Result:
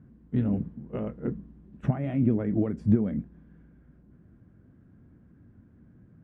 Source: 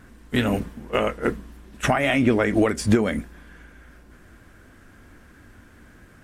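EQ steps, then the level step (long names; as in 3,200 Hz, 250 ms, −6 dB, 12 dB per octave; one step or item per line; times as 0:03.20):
resonant band-pass 150 Hz, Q 1.8
+2.5 dB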